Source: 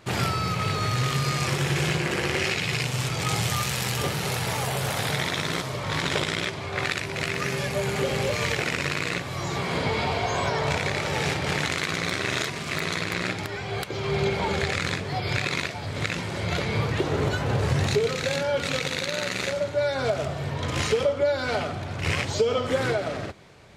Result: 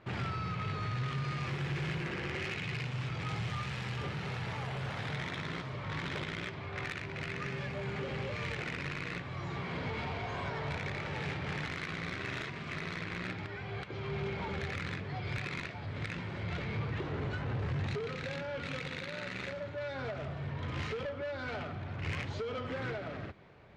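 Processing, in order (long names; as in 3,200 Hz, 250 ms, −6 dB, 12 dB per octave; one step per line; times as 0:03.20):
0:01.48–0:02.10: noise that follows the level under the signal 12 dB
low-pass filter 2,500 Hz 12 dB per octave
soft clipping −22.5 dBFS, distortion −14 dB
dynamic equaliser 600 Hz, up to −6 dB, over −41 dBFS, Q 0.75
level −6 dB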